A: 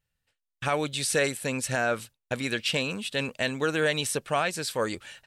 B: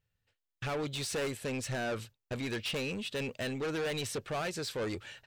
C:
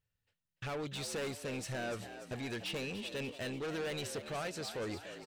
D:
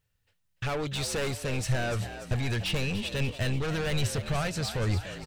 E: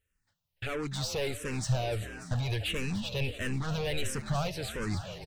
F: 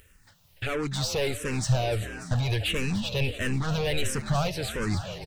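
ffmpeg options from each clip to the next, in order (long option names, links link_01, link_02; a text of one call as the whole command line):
ffmpeg -i in.wav -af "equalizer=frequency=100:width_type=o:width=0.67:gain=8,equalizer=frequency=400:width_type=o:width=0.67:gain=5,equalizer=frequency=10000:width_type=o:width=0.67:gain=-11,asoftclip=type=tanh:threshold=-28.5dB,volume=-2.5dB" out.wav
ffmpeg -i in.wav -filter_complex "[0:a]asplit=7[link_01][link_02][link_03][link_04][link_05][link_06][link_07];[link_02]adelay=292,afreqshift=63,volume=-11dB[link_08];[link_03]adelay=584,afreqshift=126,volume=-16dB[link_09];[link_04]adelay=876,afreqshift=189,volume=-21.1dB[link_10];[link_05]adelay=1168,afreqshift=252,volume=-26.1dB[link_11];[link_06]adelay=1460,afreqshift=315,volume=-31.1dB[link_12];[link_07]adelay=1752,afreqshift=378,volume=-36.2dB[link_13];[link_01][link_08][link_09][link_10][link_11][link_12][link_13]amix=inputs=7:normalize=0,volume=-4.5dB" out.wav
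ffmpeg -i in.wav -af "asubboost=boost=12:cutoff=100,volume=8.5dB" out.wav
ffmpeg -i in.wav -filter_complex "[0:a]aecho=1:1:622:0.112,asplit=2[link_01][link_02];[link_02]afreqshift=-1.5[link_03];[link_01][link_03]amix=inputs=2:normalize=1" out.wav
ffmpeg -i in.wav -af "acompressor=mode=upward:threshold=-48dB:ratio=2.5,volume=5dB" out.wav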